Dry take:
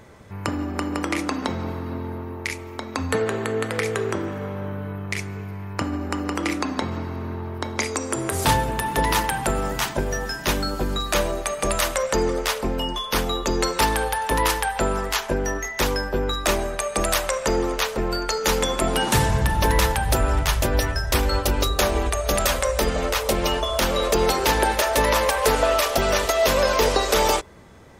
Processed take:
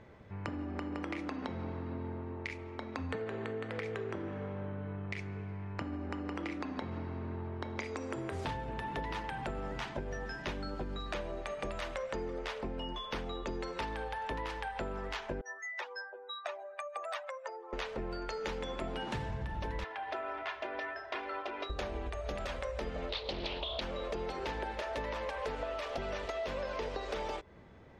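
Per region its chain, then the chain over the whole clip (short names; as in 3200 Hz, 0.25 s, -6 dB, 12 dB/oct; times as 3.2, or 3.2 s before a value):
15.41–17.73 spectral contrast raised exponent 1.9 + HPF 720 Hz 24 dB/oct
19.84–21.7 BPF 600–2800 Hz + comb 2.9 ms, depth 69%
23.09–23.81 synth low-pass 4000 Hz, resonance Q 9 + bell 1500 Hz -6.5 dB 0.8 oct + Doppler distortion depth 0.58 ms
whole clip: LPF 3100 Hz 12 dB/oct; bell 1200 Hz -3 dB 0.74 oct; compressor, threshold -27 dBFS; gain -8 dB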